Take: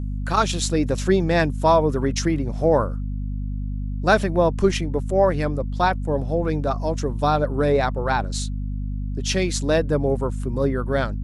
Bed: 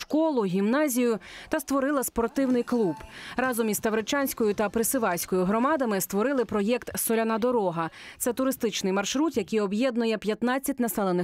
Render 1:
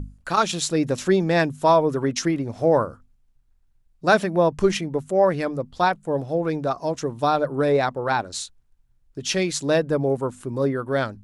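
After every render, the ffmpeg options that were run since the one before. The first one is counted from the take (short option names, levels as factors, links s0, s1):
-af "bandreject=f=50:t=h:w=6,bandreject=f=100:t=h:w=6,bandreject=f=150:t=h:w=6,bandreject=f=200:t=h:w=6,bandreject=f=250:t=h:w=6"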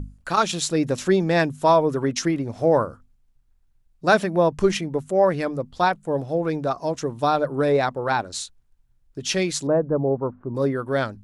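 -filter_complex "[0:a]asettb=1/sr,asplit=3[s0][s1][s2];[s0]atrim=end=9.674[s3];[s1]atrim=start=9.67:end=10.55,asetpts=PTS-STARTPTS,afade=t=in:d=0.004:c=qsin,afade=t=out:st=0.876:d=0.004:c=qsin,lowpass=f=1200:w=0.5412,lowpass=f=1200:w=1.3066[s4];[s2]atrim=start=10.546[s5];[s3][s4]acrossfade=d=0.004:c1=hsin:c2=qsin[s6];[s6][s5]acrossfade=d=0.004:c1=qsin:c2=hsin"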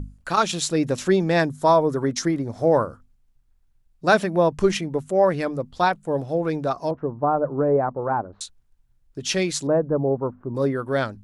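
-filter_complex "[0:a]asettb=1/sr,asplit=3[s0][s1][s2];[s0]atrim=end=1.404[s3];[s1]atrim=start=1.4:end=2.67,asetpts=PTS-STARTPTS,afade=t=in:d=0.004:c=qsin,afade=t=out:st=1.266:d=0.004:c=qsin,equalizer=f=2700:t=o:w=0.41:g=-10[s4];[s2]atrim=start=2.666[s5];[s3][s4]acrossfade=d=0.004:c1=hsin:c2=qsin[s6];[s6][s5]acrossfade=d=0.004:c1=qsin:c2=hsin,asettb=1/sr,asplit=3[s7][s8][s9];[s7]atrim=end=6.914[s10];[s8]atrim=start=6.91:end=8.41,asetpts=PTS-STARTPTS,afade=t=in:d=0.004:c=qsin,afade=t=out:st=1.496:d=0.004:c=qsin,lowpass=f=1200:w=0.5412,lowpass=f=1200:w=1.3066[s11];[s9]atrim=start=8.406[s12];[s10][s11]acrossfade=d=0.004:c1=hsin:c2=qsin[s13];[s13][s12]acrossfade=d=0.004:c1=qsin:c2=hsin"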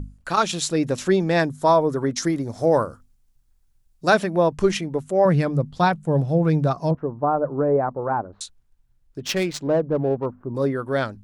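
-filter_complex "[0:a]asettb=1/sr,asplit=3[s0][s1][s2];[s0]atrim=end=2.224[s3];[s1]atrim=start=2.22:end=4.1,asetpts=PTS-STARTPTS,afade=t=in:d=0.004:c=qsin,afade=t=out:st=1.876:d=0.004:c=qsin,bass=f=250:g=0,treble=f=4000:g=8[s4];[s2]atrim=start=4.096[s5];[s3][s4]acrossfade=d=0.004:c1=hsin:c2=qsin[s6];[s6][s5]acrossfade=d=0.004:c1=qsin:c2=hsin,asettb=1/sr,asplit=3[s7][s8][s9];[s7]atrim=end=5.254[s10];[s8]atrim=start=5.25:end=6.95,asetpts=PTS-STARTPTS,afade=t=in:d=0.004:c=qsin,afade=t=out:st=1.696:d=0.004:c=qsin,equalizer=f=150:w=1.5:g=12.5[s11];[s9]atrim=start=6.946[s12];[s10][s11]acrossfade=d=0.004:c1=hsin:c2=qsin[s13];[s13][s12]acrossfade=d=0.004:c1=qsin:c2=hsin,asettb=1/sr,asplit=3[s14][s15][s16];[s14]atrim=end=9.204[s17];[s15]atrim=start=9.2:end=10.26,asetpts=PTS-STARTPTS,afade=t=in:d=0.004:c=qsin,afade=t=out:st=1.056:d=0.004:c=qsin,adynamicsmooth=sensitivity=3.5:basefreq=1400[s18];[s16]atrim=start=10.256[s19];[s17][s18]acrossfade=d=0.004:c1=hsin:c2=qsin[s20];[s20][s19]acrossfade=d=0.004:c1=qsin:c2=hsin"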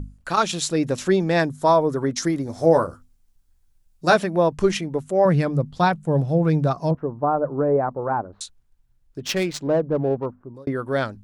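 -filter_complex "[0:a]asettb=1/sr,asplit=3[s0][s1][s2];[s0]atrim=end=2.454[s3];[s1]atrim=start=2.45:end=4.16,asetpts=PTS-STARTPTS,afade=t=in:d=0.004:c=qsin,afade=t=out:st=1.706:d=0.004:c=qsin,asplit=2[s4][s5];[s5]adelay=12,volume=0.501[s6];[s4][s6]amix=inputs=2:normalize=0,atrim=end_sample=75411[s7];[s2]atrim=start=4.156[s8];[s3][s7]acrossfade=d=0.004:c1=hsin:c2=qsin[s9];[s9][s8]acrossfade=d=0.004:c1=qsin:c2=hsin,asplit=2[s10][s11];[s10]atrim=end=10.67,asetpts=PTS-STARTPTS,afade=t=out:st=10.18:d=0.49[s12];[s11]atrim=start=10.67,asetpts=PTS-STARTPTS,afade=t=in:d=0.004:c=hsin[s13];[s12][s13]concat=n=2:v=0:a=1"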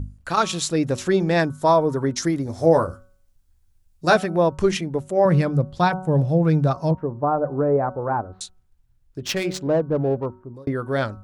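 -af "equalizer=f=84:w=1.5:g=7.5,bandreject=f=186.4:t=h:w=4,bandreject=f=372.8:t=h:w=4,bandreject=f=559.2:t=h:w=4,bandreject=f=745.6:t=h:w=4,bandreject=f=932:t=h:w=4,bandreject=f=1118.4:t=h:w=4,bandreject=f=1304.8:t=h:w=4,bandreject=f=1491.2:t=h:w=4"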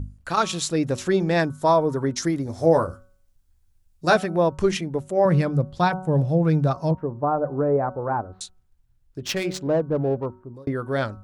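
-af "volume=0.841"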